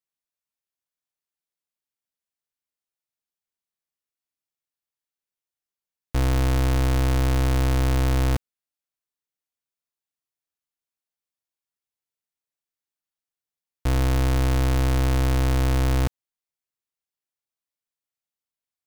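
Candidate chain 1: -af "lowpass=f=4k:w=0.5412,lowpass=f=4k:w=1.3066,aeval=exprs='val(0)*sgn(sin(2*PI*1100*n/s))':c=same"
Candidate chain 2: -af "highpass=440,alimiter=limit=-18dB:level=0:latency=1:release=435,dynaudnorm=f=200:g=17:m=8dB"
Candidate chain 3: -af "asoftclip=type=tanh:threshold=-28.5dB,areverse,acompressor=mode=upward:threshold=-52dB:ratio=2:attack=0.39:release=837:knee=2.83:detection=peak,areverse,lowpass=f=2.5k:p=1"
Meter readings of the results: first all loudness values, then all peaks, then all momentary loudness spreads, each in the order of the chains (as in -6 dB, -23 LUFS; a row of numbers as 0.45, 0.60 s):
-19.5, -27.5, -32.5 LUFS; -18.0, -10.0, -28.5 dBFS; 4, 4, 4 LU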